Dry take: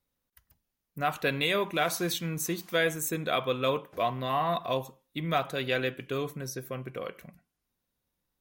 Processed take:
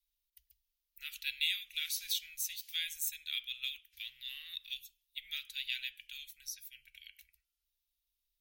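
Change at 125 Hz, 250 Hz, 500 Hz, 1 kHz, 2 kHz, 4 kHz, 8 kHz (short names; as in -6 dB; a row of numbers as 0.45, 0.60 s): under -40 dB, under -40 dB, under -40 dB, under -40 dB, -9.5 dB, -1.0 dB, -3.5 dB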